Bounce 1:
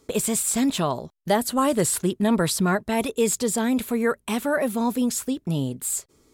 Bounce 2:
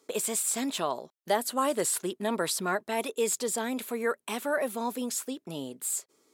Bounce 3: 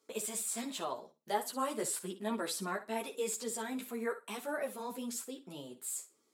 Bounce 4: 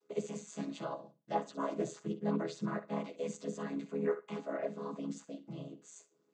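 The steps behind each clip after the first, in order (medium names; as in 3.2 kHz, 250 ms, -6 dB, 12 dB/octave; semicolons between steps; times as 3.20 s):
high-pass 350 Hz 12 dB/octave; trim -4.5 dB
flutter echo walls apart 10 m, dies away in 0.27 s; three-phase chorus; trim -5 dB
vocoder on a held chord minor triad, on C#3; trim +1.5 dB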